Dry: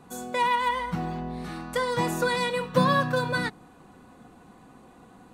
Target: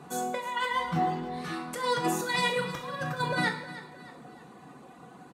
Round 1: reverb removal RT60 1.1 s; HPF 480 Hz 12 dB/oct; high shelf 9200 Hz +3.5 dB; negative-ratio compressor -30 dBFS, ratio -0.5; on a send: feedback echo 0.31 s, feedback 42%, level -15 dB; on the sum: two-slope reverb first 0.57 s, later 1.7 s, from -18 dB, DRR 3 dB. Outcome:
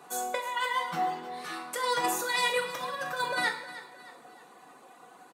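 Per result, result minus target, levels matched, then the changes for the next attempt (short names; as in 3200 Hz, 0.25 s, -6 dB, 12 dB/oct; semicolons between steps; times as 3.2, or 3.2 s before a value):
125 Hz band -15.0 dB; 8000 Hz band +3.5 dB
change: HPF 140 Hz 12 dB/oct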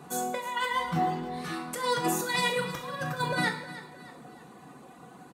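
8000 Hz band +3.0 dB
change: high shelf 9200 Hz -5 dB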